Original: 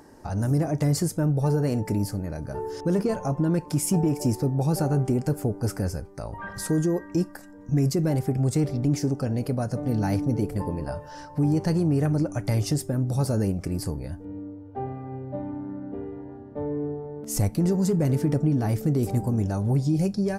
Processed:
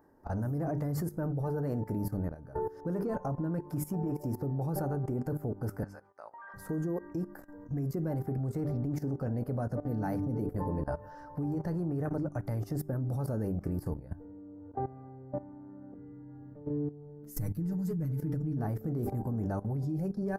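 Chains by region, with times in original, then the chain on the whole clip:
0:05.83–0:06.54: high-pass filter 920 Hz + high-frequency loss of the air 63 metres
0:15.94–0:18.57: parametric band 710 Hz −14.5 dB 2.2 octaves + comb filter 6.5 ms, depth 93%
whole clip: flat-topped bell 4,700 Hz −15 dB 2.4 octaves; mains-hum notches 50/100/150/200/250/300/350/400 Hz; output level in coarse steps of 16 dB

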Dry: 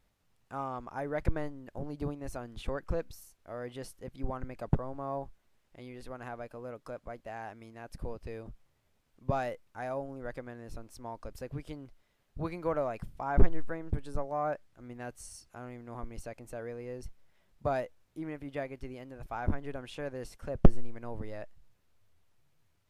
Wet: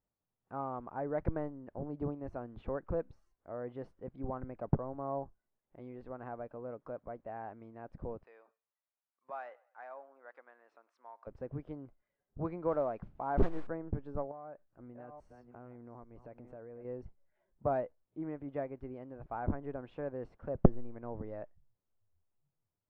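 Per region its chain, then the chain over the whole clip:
0:08.23–0:11.27: high-pass filter 1,200 Hz + repeating echo 100 ms, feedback 39%, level −22 dB
0:12.68–0:13.67: parametric band 120 Hz −3.5 dB 1.2 octaves + noise that follows the level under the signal 21 dB
0:14.31–0:16.85: delay that plays each chunk backwards 447 ms, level −12.5 dB + downward compressor 5 to 1, threshold −45 dBFS
whole clip: noise reduction from a noise print of the clip's start 13 dB; low-pass filter 1,100 Hz 12 dB per octave; low-shelf EQ 66 Hz −11 dB

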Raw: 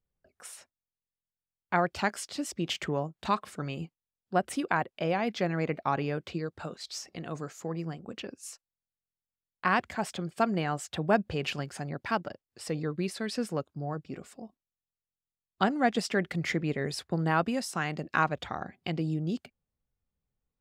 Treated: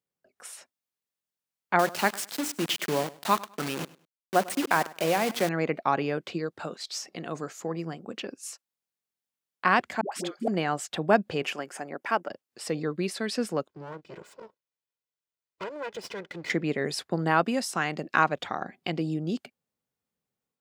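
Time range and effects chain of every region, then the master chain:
0:01.79–0:05.49: mains-hum notches 60/120/180/240/300 Hz + bit-depth reduction 6 bits, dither none + repeating echo 101 ms, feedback 24%, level −20 dB
0:10.01–0:10.48: low shelf with overshoot 210 Hz −8 dB, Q 1.5 + all-pass dispersion highs, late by 109 ms, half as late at 520 Hz
0:11.42–0:12.29: high-pass filter 300 Hz + parametric band 4,100 Hz −10.5 dB 0.63 octaves
0:13.68–0:16.50: lower of the sound and its delayed copy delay 2 ms + parametric band 12,000 Hz −9.5 dB 1.1 octaves + downward compressor 2.5 to 1, threshold −41 dBFS
whole clip: automatic gain control gain up to 4 dB; high-pass filter 200 Hz 12 dB per octave

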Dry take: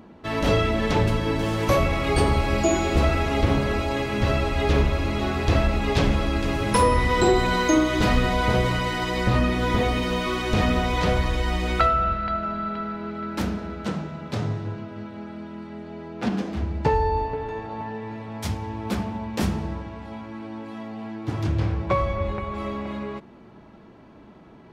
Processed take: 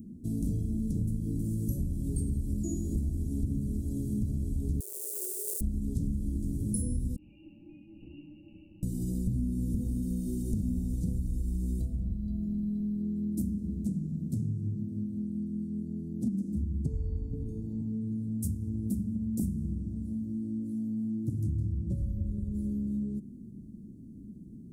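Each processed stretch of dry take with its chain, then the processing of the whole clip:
0:04.80–0:05.61: each half-wave held at its own peak + linear-phase brick-wall high-pass 360 Hz
0:07.16–0:08.83: high-frequency loss of the air 310 metres + voice inversion scrambler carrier 2,800 Hz + micro pitch shift up and down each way 10 cents
whole clip: elliptic band-stop filter 240–8,700 Hz, stop band 80 dB; low-shelf EQ 180 Hz −3 dB; downward compressor 4 to 1, threshold −36 dBFS; level +6.5 dB

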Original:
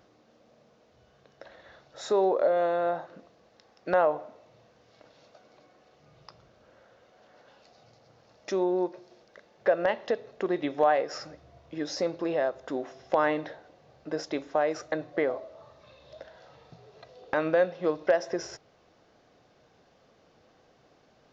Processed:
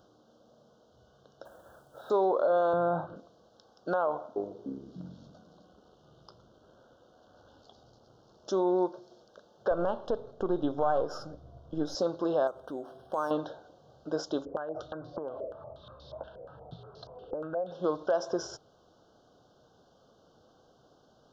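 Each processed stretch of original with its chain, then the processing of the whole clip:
0:01.45–0:02.10: low-pass filter 2,400 Hz 24 dB per octave + log-companded quantiser 6 bits
0:02.73–0:03.16: bass and treble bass +15 dB, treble −14 dB + multiband upward and downward compressor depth 40%
0:04.06–0:08.49: amplitude modulation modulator 77 Hz, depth 25% + delay with pitch and tempo change per echo 299 ms, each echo −7 semitones, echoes 3, each echo −6 dB
0:09.71–0:11.95: gain on one half-wave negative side −3 dB + spectral tilt −2 dB per octave
0:12.47–0:13.31: downward compressor 1.5 to 1, threshold −43 dBFS + linearly interpolated sample-rate reduction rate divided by 6×
0:14.45–0:17.71: low-shelf EQ 150 Hz +11 dB + downward compressor 12 to 1, threshold −35 dBFS + low-pass on a step sequencer 8.4 Hz 500–4,900 Hz
whole clip: elliptic band-stop filter 1,500–3,100 Hz, stop band 60 dB; dynamic equaliser 1,100 Hz, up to +6 dB, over −44 dBFS, Q 1.6; brickwall limiter −18.5 dBFS

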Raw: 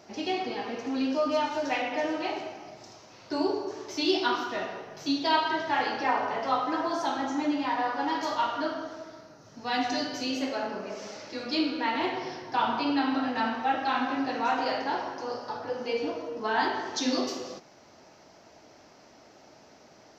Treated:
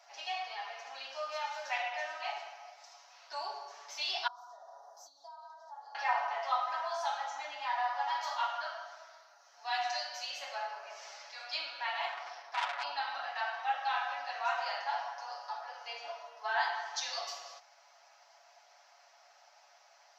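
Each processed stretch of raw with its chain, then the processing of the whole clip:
0:04.27–0:05.95: downward compressor 16 to 1, threshold −38 dBFS + Chebyshev band-stop filter 930–6,200 Hz
0:12.08–0:12.83: parametric band 110 Hz +14 dB 2.6 octaves + saturating transformer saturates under 2,700 Hz
whole clip: elliptic high-pass filter 690 Hz, stop band 80 dB; comb filter 7.1 ms; level −5.5 dB

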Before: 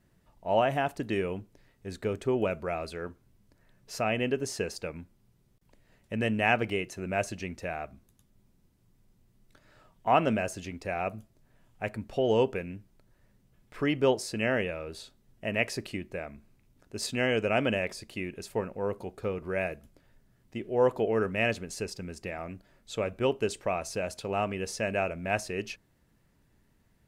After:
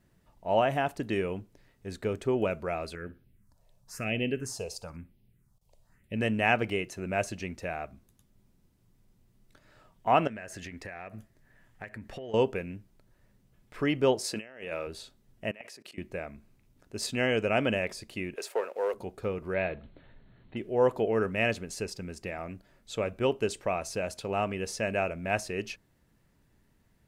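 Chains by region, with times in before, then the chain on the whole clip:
0:02.95–0:06.16: all-pass phaser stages 4, 1 Hz, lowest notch 260–1,300 Hz + repeating echo 61 ms, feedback 31%, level −19 dB
0:10.27–0:12.34: parametric band 1,800 Hz +13 dB 0.42 octaves + downward compressor 10 to 1, threshold −37 dBFS
0:14.24–0:14.87: high-pass filter 340 Hz 6 dB per octave + compressor whose output falls as the input rises −37 dBFS, ratio −0.5
0:15.51–0:15.98: high-pass filter 140 Hz 24 dB per octave + output level in coarse steps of 24 dB + low-shelf EQ 340 Hz −9.5 dB
0:18.36–0:18.94: leveller curve on the samples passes 1 + Chebyshev high-pass filter 460 Hz, order 3 + multiband upward and downward compressor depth 40%
0:19.54–0:20.57: mu-law and A-law mismatch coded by mu + Chebyshev low-pass filter 4,300 Hz, order 10
whole clip: no processing

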